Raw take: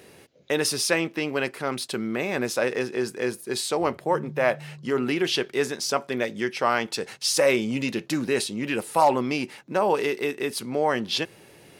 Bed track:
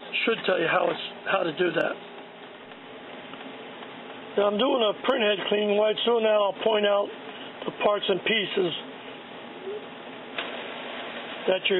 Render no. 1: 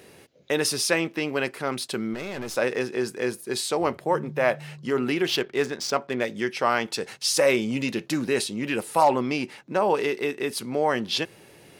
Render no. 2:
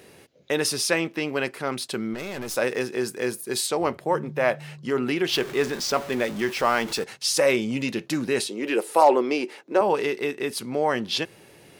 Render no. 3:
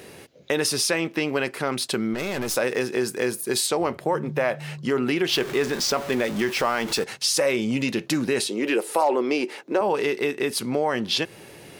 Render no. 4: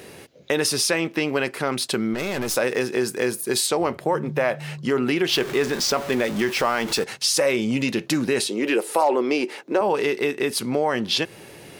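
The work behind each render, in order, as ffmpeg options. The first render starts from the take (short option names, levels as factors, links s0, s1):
-filter_complex "[0:a]asplit=3[s0][s1][s2];[s0]afade=t=out:st=2.13:d=0.02[s3];[s1]aeval=exprs='(tanh(28.2*val(0)+0.6)-tanh(0.6))/28.2':c=same,afade=t=in:st=2.13:d=0.02,afade=t=out:st=2.55:d=0.02[s4];[s2]afade=t=in:st=2.55:d=0.02[s5];[s3][s4][s5]amix=inputs=3:normalize=0,asettb=1/sr,asplit=3[s6][s7][s8];[s6]atrim=end=5.274[s9];[s7]atrim=start=5.27:end=6.24,asetpts=PTS-STARTPTS,afade=t=in:d=0.004:c=qsin,afade=t=out:st=0.966:d=0.004:c=qsin,adynamicsmooth=sensitivity=5.5:basefreq=2800[s10];[s8]atrim=start=6.236[s11];[s9][s10]acrossfade=d=0.004:c1=hsin:c2=qsin[s12];[s12][s11]acrossfade=d=0.004:c1=qsin:c2=hsin,asettb=1/sr,asplit=3[s13][s14][s15];[s13]atrim=end=9.034[s16];[s14]atrim=start=9.03:end=10.47,asetpts=PTS-STARTPTS,afade=t=in:d=0.004:c=qsin,afade=t=out:st=1.436:d=0.004:c=qsin,highshelf=f=9500:g=-6.5[s17];[s15]atrim=start=10.466[s18];[s16][s17]acrossfade=d=0.004:c1=hsin:c2=qsin[s19];[s19][s18]acrossfade=d=0.004:c1=qsin:c2=hsin"
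-filter_complex "[0:a]asettb=1/sr,asplit=3[s0][s1][s2];[s0]atrim=end=2.184[s3];[s1]atrim=start=2.18:end=3.67,asetpts=PTS-STARTPTS,afade=t=in:d=0.004:c=qsin,afade=t=out:st=1.486:d=0.004:c=qsin,highshelf=f=9400:g=10[s4];[s2]atrim=start=3.666[s5];[s3][s4]acrossfade=d=0.004:c1=hsin:c2=qsin[s6];[s6][s5]acrossfade=d=0.004:c1=qsin:c2=hsin,asettb=1/sr,asplit=3[s7][s8][s9];[s7]atrim=end=5.334[s10];[s8]atrim=start=5.33:end=7.04,asetpts=PTS-STARTPTS,afade=t=in:d=0.004:c=qsin,afade=t=out:st=1.706:d=0.004:c=qsin,aeval=exprs='val(0)+0.5*0.0251*sgn(val(0))':c=same[s11];[s9]atrim=start=7.036[s12];[s10][s11]acrossfade=d=0.004:c1=hsin:c2=qsin[s13];[s13][s12]acrossfade=d=0.004:c1=qsin:c2=hsin,asettb=1/sr,asplit=3[s14][s15][s16];[s14]atrim=end=8.484[s17];[s15]atrim=start=8.48:end=9.81,asetpts=PTS-STARTPTS,afade=t=in:d=0.004:c=qsin,afade=t=out:st=1.326:d=0.004:c=qsin,highpass=f=380:t=q:w=2.3[s18];[s16]atrim=start=9.806[s19];[s17][s18]acrossfade=d=0.004:c1=hsin:c2=qsin[s20];[s20][s19]acrossfade=d=0.004:c1=qsin:c2=hsin"
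-filter_complex "[0:a]asplit=2[s0][s1];[s1]alimiter=limit=0.168:level=0:latency=1:release=25,volume=1.06[s2];[s0][s2]amix=inputs=2:normalize=0,acompressor=threshold=0.0708:ratio=2"
-af "volume=1.19"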